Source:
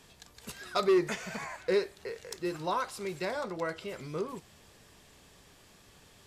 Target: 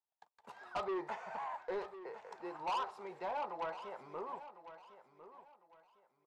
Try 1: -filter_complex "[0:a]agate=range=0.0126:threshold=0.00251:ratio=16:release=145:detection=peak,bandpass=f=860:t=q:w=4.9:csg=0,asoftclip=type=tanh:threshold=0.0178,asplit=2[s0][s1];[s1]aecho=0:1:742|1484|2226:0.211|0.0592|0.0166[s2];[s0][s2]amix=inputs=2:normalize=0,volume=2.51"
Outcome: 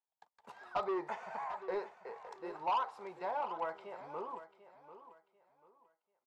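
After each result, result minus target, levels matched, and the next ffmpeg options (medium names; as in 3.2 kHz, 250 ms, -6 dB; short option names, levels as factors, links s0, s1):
echo 311 ms early; saturation: distortion -5 dB
-filter_complex "[0:a]agate=range=0.0126:threshold=0.00251:ratio=16:release=145:detection=peak,bandpass=f=860:t=q:w=4.9:csg=0,asoftclip=type=tanh:threshold=0.0178,asplit=2[s0][s1];[s1]aecho=0:1:1053|2106|3159:0.211|0.0592|0.0166[s2];[s0][s2]amix=inputs=2:normalize=0,volume=2.51"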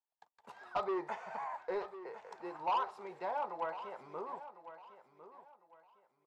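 saturation: distortion -5 dB
-filter_complex "[0:a]agate=range=0.0126:threshold=0.00251:ratio=16:release=145:detection=peak,bandpass=f=860:t=q:w=4.9:csg=0,asoftclip=type=tanh:threshold=0.00891,asplit=2[s0][s1];[s1]aecho=0:1:1053|2106|3159:0.211|0.0592|0.0166[s2];[s0][s2]amix=inputs=2:normalize=0,volume=2.51"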